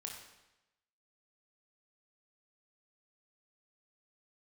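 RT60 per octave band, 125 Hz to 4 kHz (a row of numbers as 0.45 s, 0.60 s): 1.0 s, 0.95 s, 0.95 s, 0.95 s, 0.95 s, 0.90 s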